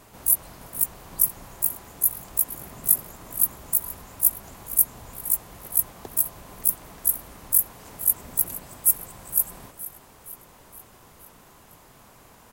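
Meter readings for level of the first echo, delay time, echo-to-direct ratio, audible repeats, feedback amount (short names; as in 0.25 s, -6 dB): -16.0 dB, 0.467 s, -14.5 dB, 4, 57%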